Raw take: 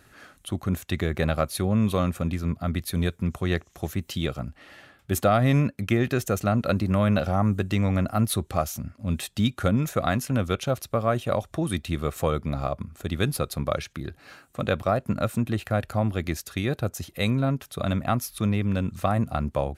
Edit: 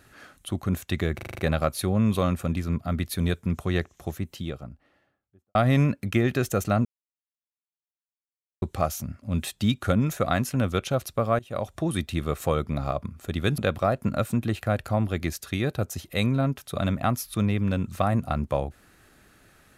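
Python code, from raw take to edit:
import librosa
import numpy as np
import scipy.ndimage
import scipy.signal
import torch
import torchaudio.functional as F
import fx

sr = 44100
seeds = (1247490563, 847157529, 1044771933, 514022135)

y = fx.studio_fade_out(x, sr, start_s=3.34, length_s=1.97)
y = fx.edit(y, sr, fx.stutter(start_s=1.15, slice_s=0.04, count=7),
    fx.silence(start_s=6.61, length_s=1.77),
    fx.fade_in_from(start_s=11.15, length_s=0.35, floor_db=-22.5),
    fx.cut(start_s=13.34, length_s=1.28), tone=tone)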